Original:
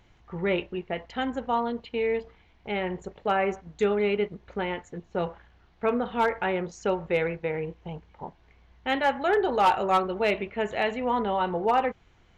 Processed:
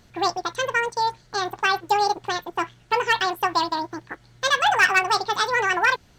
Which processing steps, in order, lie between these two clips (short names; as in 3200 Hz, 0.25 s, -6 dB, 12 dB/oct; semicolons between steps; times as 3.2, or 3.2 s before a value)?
block floating point 7-bit; speed mistake 7.5 ips tape played at 15 ips; gain +4.5 dB